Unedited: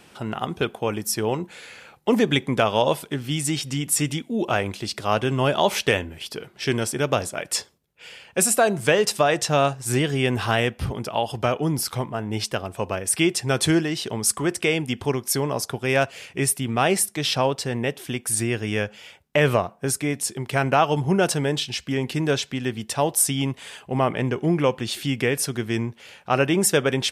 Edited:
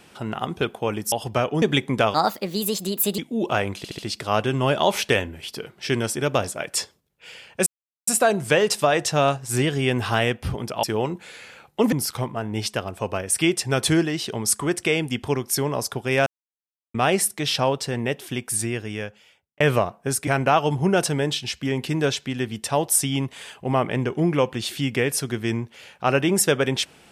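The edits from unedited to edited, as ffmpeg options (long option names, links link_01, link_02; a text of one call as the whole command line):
ffmpeg -i in.wav -filter_complex "[0:a]asplit=15[link_01][link_02][link_03][link_04][link_05][link_06][link_07][link_08][link_09][link_10][link_11][link_12][link_13][link_14][link_15];[link_01]atrim=end=1.122[link_16];[link_02]atrim=start=11.198:end=11.702[link_17];[link_03]atrim=start=2.208:end=2.734[link_18];[link_04]atrim=start=2.73:end=4.17,asetpts=PTS-STARTPTS,asetrate=60858,aresample=44100,atrim=end_sample=46017,asetpts=PTS-STARTPTS[link_19];[link_05]atrim=start=4.166:end=4.832[link_20];[link_06]atrim=start=4.758:end=4.832[link_21];[link_07]atrim=start=4.758:end=4.832[link_22];[link_08]atrim=start=4.758:end=8.44,asetpts=PTS-STARTPTS,afade=type=out:start_time=3.678:duration=0.004:curve=hsin,apad=pad_dur=0.41[link_23];[link_09]atrim=start=8.44:end=11.202,asetpts=PTS-STARTPTS,afade=type=in:duration=0.004:curve=hsin[link_24];[link_10]atrim=start=1.118:end=2.212[link_25];[link_11]atrim=start=11.698:end=16.04,asetpts=PTS-STARTPTS,afade=type=out:start_time=4.338:duration=0.004:curve=hsin[link_26];[link_12]atrim=start=16.04:end=16.72,asetpts=PTS-STARTPTS,volume=0[link_27];[link_13]atrim=start=16.72:end=19.38,asetpts=PTS-STARTPTS,afade=type=in:duration=0.004:curve=hsin,afade=type=out:start_time=1.45:duration=1.21[link_28];[link_14]atrim=start=19.38:end=20.052,asetpts=PTS-STARTPTS,afade=type=in:duration=0.004:curve=hsin[link_29];[link_15]atrim=start=20.528[link_30];[link_16][link_17]acrossfade=duration=0.004:curve1=hsin:curve2=hsin[link_31];[link_31][link_18]acrossfade=duration=0.004:curve1=hsin:curve2=hsin[link_32];[link_32][link_19]acrossfade=duration=0.004:curve1=hsin:curve2=hsin[link_33];[link_33][link_20]acrossfade=duration=0.004:curve1=hsin:curve2=hsin[link_34];[link_34][link_21]acrossfade=duration=0.004:curve1=hsin:curve2=hsin[link_35];[link_35][link_22]acrossfade=duration=0.004:curve1=hsin:curve2=hsin[link_36];[link_23][link_24]concat=n=2:v=0:a=1[link_37];[link_36][link_37]acrossfade=duration=0.004:curve1=hsin:curve2=hsin[link_38];[link_38][link_25]acrossfade=duration=0.004:curve1=hsin:curve2=hsin[link_39];[link_26][link_27][link_28][link_29]concat=n=4:v=0:a=1[link_40];[link_39][link_40]acrossfade=duration=0.004:curve1=hsin:curve2=hsin[link_41];[link_41][link_30]acrossfade=duration=0.004:curve1=hsin:curve2=hsin" out.wav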